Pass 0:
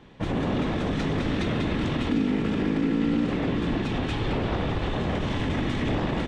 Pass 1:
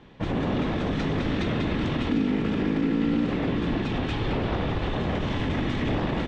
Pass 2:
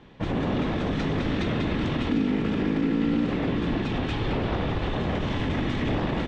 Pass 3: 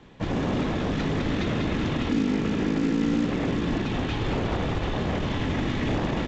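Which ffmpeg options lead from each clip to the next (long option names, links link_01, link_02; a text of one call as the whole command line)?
ffmpeg -i in.wav -af "lowpass=6100" out.wav
ffmpeg -i in.wav -af anull out.wav
ffmpeg -i in.wav -filter_complex "[0:a]acrossover=split=420|2900[link_01][link_02][link_03];[link_01]acrusher=bits=4:mode=log:mix=0:aa=0.000001[link_04];[link_04][link_02][link_03]amix=inputs=3:normalize=0" -ar 16000 -c:a pcm_alaw out.wav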